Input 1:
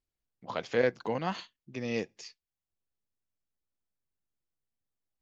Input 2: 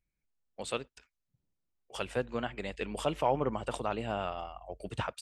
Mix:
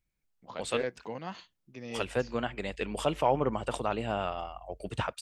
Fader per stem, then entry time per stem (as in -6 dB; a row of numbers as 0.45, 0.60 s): -7.0, +2.5 dB; 0.00, 0.00 s